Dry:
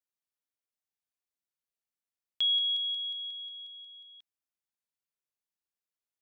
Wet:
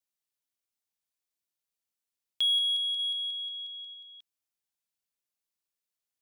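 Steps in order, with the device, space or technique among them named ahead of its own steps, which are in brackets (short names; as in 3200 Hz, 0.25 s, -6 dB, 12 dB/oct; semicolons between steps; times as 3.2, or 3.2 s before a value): 2.99–3.94 bell 2700 Hz +3 dB 1.7 oct; exciter from parts (in parallel at -4 dB: HPF 2200 Hz 12 dB/oct + soft clip -33 dBFS, distortion -10 dB)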